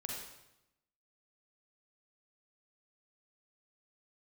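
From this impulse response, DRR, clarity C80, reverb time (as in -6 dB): -1.5 dB, 3.0 dB, 0.90 s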